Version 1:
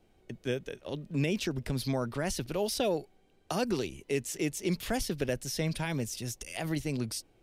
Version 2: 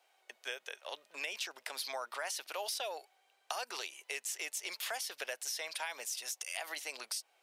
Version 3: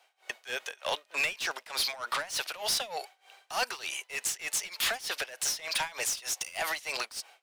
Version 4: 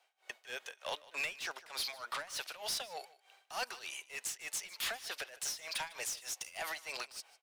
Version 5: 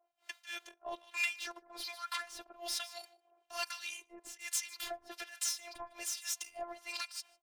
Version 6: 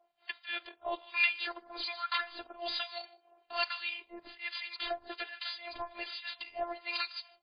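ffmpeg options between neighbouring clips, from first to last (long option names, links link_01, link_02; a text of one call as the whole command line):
ffmpeg -i in.wav -af "highpass=frequency=720:width=0.5412,highpass=frequency=720:width=1.3066,acompressor=threshold=-39dB:ratio=6,volume=3.5dB" out.wav
ffmpeg -i in.wav -filter_complex "[0:a]asplit=2[link_01][link_02];[link_02]highpass=frequency=720:poles=1,volume=22dB,asoftclip=type=tanh:threshold=-21dB[link_03];[link_01][link_03]amix=inputs=2:normalize=0,lowpass=frequency=6800:poles=1,volume=-6dB,tremolo=f=3.3:d=0.9,dynaudnorm=framelen=150:gausssize=3:maxgain=10.5dB,volume=-7.5dB" out.wav
ffmpeg -i in.wav -af "aecho=1:1:152:0.1,volume=-8dB" out.wav
ffmpeg -i in.wav -filter_complex "[0:a]acrossover=split=910[link_01][link_02];[link_01]aeval=exprs='val(0)*(1-1/2+1/2*cos(2*PI*1.2*n/s))':channel_layout=same[link_03];[link_02]aeval=exprs='val(0)*(1-1/2-1/2*cos(2*PI*1.2*n/s))':channel_layout=same[link_04];[link_03][link_04]amix=inputs=2:normalize=0,afftfilt=real='hypot(re,im)*cos(PI*b)':imag='0':win_size=512:overlap=0.75,volume=7.5dB" out.wav
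ffmpeg -i in.wav -af "volume=6.5dB" -ar 11025 -c:a libmp3lame -b:a 16k out.mp3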